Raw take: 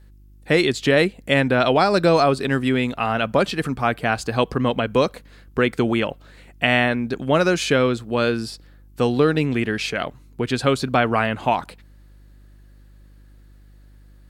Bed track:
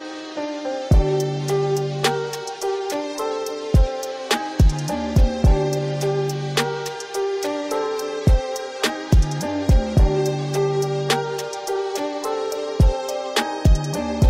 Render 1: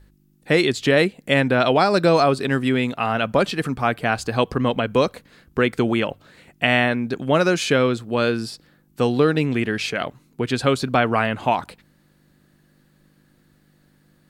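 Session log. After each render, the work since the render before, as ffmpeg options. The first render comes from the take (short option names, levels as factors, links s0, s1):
-af "bandreject=f=50:t=h:w=4,bandreject=f=100:t=h:w=4"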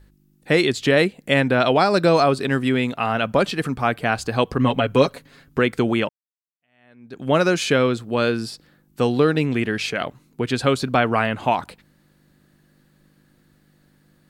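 -filter_complex "[0:a]asettb=1/sr,asplit=3[s0][s1][s2];[s0]atrim=end=4.584[s3];[s1]atrim=start=4.58:end=5.59,asetpts=PTS-STARTPTS,afade=t=in:d=0.004:c=qsin,afade=t=out:st=1.006:d=0.004:c=qsin,aecho=1:1:7.3:0.67,atrim=end_sample=44541[s4];[s2]atrim=start=5.586[s5];[s3][s4]acrossfade=d=0.004:c1=hsin:c2=qsin[s6];[s6][s5]acrossfade=d=0.004:c1=qsin:c2=hsin,asplit=2[s7][s8];[s7]atrim=end=6.09,asetpts=PTS-STARTPTS,afade=t=out:st=6.086:d=0.004:c=hsin[s9];[s8]atrim=start=6.09,asetpts=PTS-STARTPTS,afade=t=in:d=1.18:c=exp[s10];[s9][s10]concat=n=2:v=0:a=1"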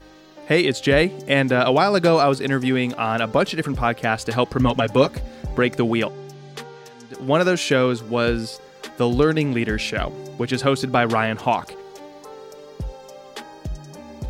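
-filter_complex "[1:a]volume=0.178[s0];[0:a][s0]amix=inputs=2:normalize=0"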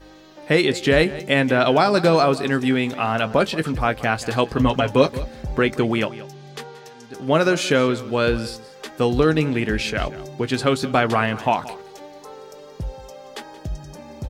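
-filter_complex "[0:a]asplit=2[s0][s1];[s1]adelay=19,volume=0.224[s2];[s0][s2]amix=inputs=2:normalize=0,aecho=1:1:178:0.141"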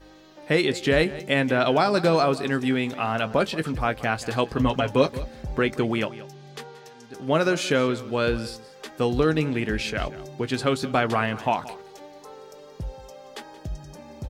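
-af "volume=0.631"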